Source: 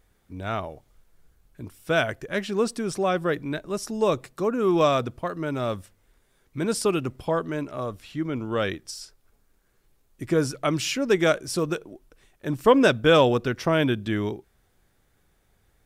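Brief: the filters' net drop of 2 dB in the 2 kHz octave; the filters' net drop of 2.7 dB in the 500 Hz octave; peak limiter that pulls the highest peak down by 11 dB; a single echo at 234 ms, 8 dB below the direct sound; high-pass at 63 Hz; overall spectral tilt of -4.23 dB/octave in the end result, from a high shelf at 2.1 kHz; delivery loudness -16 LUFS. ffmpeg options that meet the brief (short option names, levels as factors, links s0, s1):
-af "highpass=63,equalizer=f=500:t=o:g=-3.5,equalizer=f=2000:t=o:g=-7.5,highshelf=f=2100:g=8,alimiter=limit=0.133:level=0:latency=1,aecho=1:1:234:0.398,volume=4.22"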